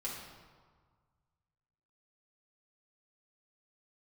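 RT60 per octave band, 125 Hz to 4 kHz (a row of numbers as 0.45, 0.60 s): 2.3, 1.6, 1.5, 1.7, 1.2, 1.0 s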